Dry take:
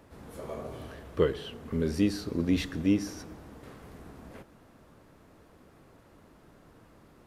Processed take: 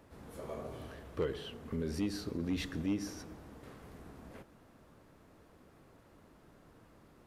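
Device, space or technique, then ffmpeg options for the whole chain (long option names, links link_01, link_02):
clipper into limiter: -af "asoftclip=type=hard:threshold=-17.5dB,alimiter=limit=-22.5dB:level=0:latency=1:release=78,volume=-4dB"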